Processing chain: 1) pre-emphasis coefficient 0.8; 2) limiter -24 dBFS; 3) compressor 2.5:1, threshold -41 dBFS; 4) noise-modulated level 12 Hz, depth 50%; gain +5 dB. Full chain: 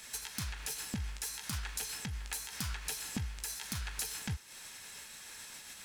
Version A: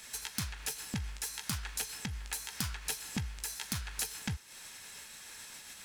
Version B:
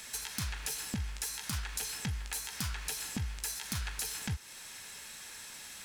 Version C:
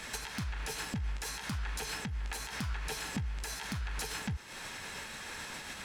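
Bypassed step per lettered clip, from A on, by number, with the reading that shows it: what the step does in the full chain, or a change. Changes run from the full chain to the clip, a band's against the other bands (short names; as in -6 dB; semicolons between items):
2, crest factor change +3.5 dB; 4, loudness change +2.0 LU; 1, 8 kHz band -7.0 dB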